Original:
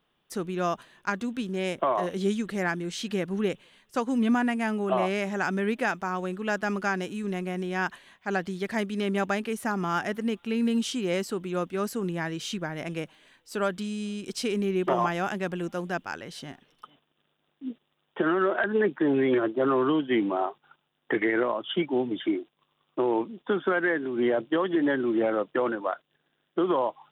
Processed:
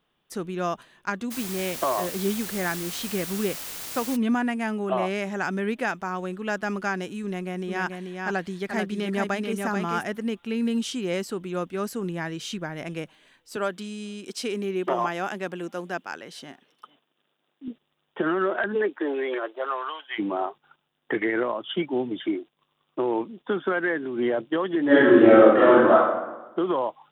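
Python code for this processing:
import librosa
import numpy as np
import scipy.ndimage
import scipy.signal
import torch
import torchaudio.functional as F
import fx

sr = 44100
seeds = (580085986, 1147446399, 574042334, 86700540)

y = fx.quant_dither(x, sr, seeds[0], bits=6, dither='triangular', at=(1.3, 4.15), fade=0.02)
y = fx.echo_single(y, sr, ms=436, db=-4.5, at=(7.67, 10.02), fade=0.02)
y = fx.highpass(y, sr, hz=220.0, slope=12, at=(13.56, 17.68))
y = fx.highpass(y, sr, hz=fx.line((18.74, 250.0), (20.18, 920.0)), slope=24, at=(18.74, 20.18), fade=0.02)
y = fx.reverb_throw(y, sr, start_s=24.86, length_s=1.07, rt60_s=1.1, drr_db=-12.0)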